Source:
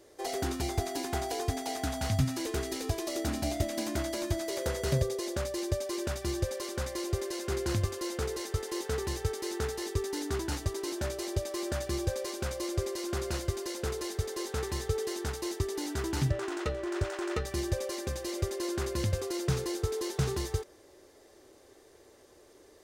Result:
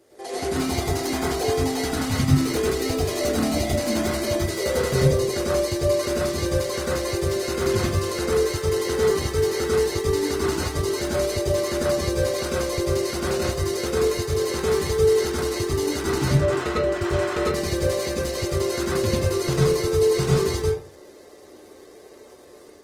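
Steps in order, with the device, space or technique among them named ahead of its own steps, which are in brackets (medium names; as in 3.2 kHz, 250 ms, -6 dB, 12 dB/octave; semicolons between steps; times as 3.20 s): far-field microphone of a smart speaker (reverberation RT60 0.40 s, pre-delay 93 ms, DRR -6 dB; high-pass 80 Hz 12 dB/octave; level rider gain up to 3.5 dB; Opus 20 kbps 48 kHz)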